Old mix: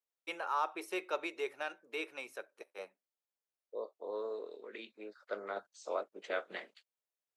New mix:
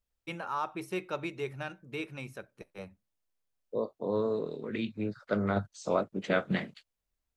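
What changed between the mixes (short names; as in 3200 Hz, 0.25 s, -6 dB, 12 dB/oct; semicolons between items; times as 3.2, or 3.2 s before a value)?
second voice +7.5 dB; master: remove HPF 390 Hz 24 dB/oct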